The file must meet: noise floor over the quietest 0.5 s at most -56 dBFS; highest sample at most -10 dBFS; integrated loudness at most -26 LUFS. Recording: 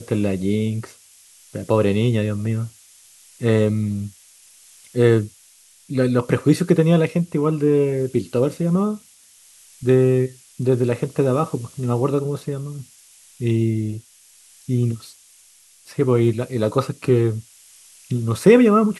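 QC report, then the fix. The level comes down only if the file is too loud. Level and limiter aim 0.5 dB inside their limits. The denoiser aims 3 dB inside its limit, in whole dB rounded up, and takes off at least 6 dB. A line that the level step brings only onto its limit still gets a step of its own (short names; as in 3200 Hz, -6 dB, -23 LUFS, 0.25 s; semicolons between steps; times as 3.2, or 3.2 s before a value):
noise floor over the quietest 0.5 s -52 dBFS: fail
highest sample -1.5 dBFS: fail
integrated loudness -20.0 LUFS: fail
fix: gain -6.5 dB; limiter -10.5 dBFS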